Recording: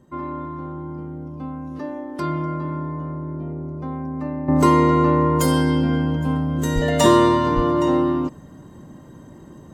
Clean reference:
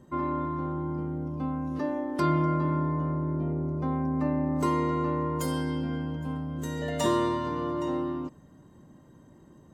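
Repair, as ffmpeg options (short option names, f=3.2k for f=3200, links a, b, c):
-filter_complex "[0:a]asplit=3[a][b][c];[a]afade=t=out:st=6.74:d=0.02[d];[b]highpass=f=140:w=0.5412,highpass=f=140:w=1.3066,afade=t=in:st=6.74:d=0.02,afade=t=out:st=6.86:d=0.02[e];[c]afade=t=in:st=6.86:d=0.02[f];[d][e][f]amix=inputs=3:normalize=0,asplit=3[g][h][i];[g]afade=t=out:st=7.55:d=0.02[j];[h]highpass=f=140:w=0.5412,highpass=f=140:w=1.3066,afade=t=in:st=7.55:d=0.02,afade=t=out:st=7.67:d=0.02[k];[i]afade=t=in:st=7.67:d=0.02[l];[j][k][l]amix=inputs=3:normalize=0,asetnsamples=n=441:p=0,asendcmd='4.48 volume volume -11.5dB',volume=0dB"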